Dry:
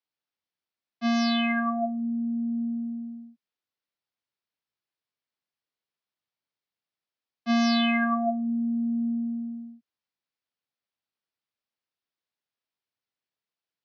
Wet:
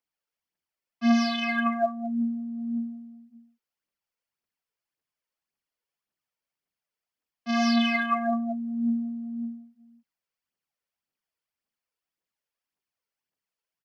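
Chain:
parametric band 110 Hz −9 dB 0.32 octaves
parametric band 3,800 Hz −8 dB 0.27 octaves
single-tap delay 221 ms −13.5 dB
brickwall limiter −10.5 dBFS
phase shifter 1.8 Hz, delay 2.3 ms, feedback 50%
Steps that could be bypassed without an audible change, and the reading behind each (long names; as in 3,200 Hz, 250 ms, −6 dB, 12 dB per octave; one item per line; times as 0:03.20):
brickwall limiter −10.5 dBFS: peak of its input −17.5 dBFS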